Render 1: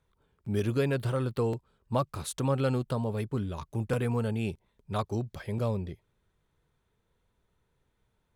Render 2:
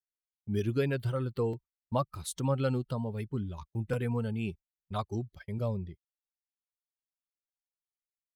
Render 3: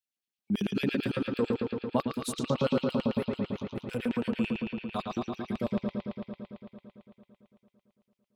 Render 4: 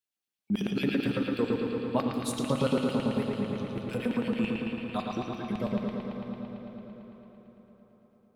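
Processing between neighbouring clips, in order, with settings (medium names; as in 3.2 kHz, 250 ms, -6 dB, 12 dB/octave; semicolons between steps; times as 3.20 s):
expander on every frequency bin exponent 1.5; gate -46 dBFS, range -30 dB
LFO high-pass square 9 Hz 210–2700 Hz; bucket-brigade echo 112 ms, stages 4096, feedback 79%, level -3.5 dB; time-frequency box 2.06–2.50 s, 490–1100 Hz -10 dB
plate-style reverb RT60 4.9 s, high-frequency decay 0.65×, DRR 4.5 dB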